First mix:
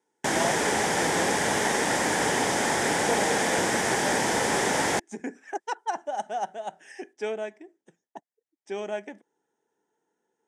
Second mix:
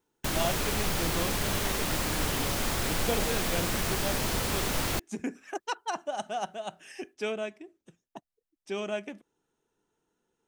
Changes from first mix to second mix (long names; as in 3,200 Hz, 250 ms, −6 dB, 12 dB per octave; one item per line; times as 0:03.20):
background −7.0 dB
master: remove loudspeaker in its box 220–9,200 Hz, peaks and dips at 450 Hz +3 dB, 840 Hz +7 dB, 1,200 Hz −7 dB, 1,800 Hz +6 dB, 2,700 Hz −7 dB, 4,200 Hz −10 dB